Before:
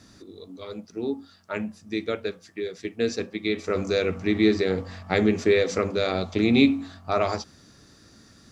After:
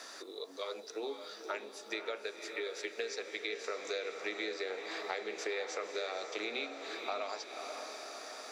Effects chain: HPF 490 Hz 24 dB/oct; compressor 5:1, threshold -40 dBFS, peak gain reduction 18 dB; on a send: diffused feedback echo 0.537 s, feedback 54%, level -8 dB; on the sum: three-band squash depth 40%; gain +3 dB

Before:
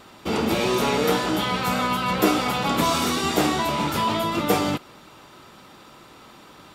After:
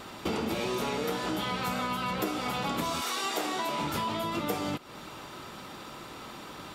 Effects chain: 3–3.8 HPF 740 Hz -> 210 Hz 12 dB/oct; compressor 6:1, threshold -33 dBFS, peak gain reduction 18 dB; gain +3.5 dB

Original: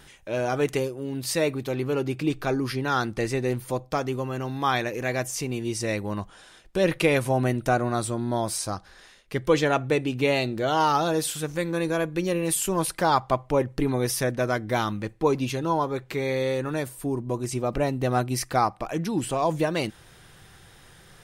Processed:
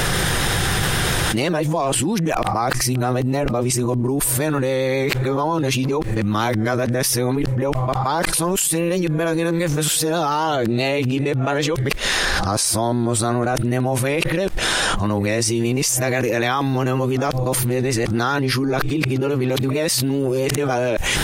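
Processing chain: whole clip reversed; vibrato 7.5 Hz 25 cents; fast leveller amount 100%; gain -4 dB

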